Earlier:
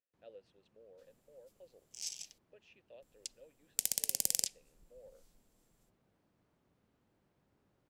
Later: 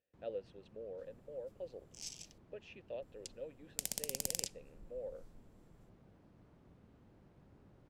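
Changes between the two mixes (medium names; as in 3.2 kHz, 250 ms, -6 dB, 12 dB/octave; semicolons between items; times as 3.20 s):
speech +10.5 dB; first sound +8.5 dB; master: add tilt EQ -2 dB/octave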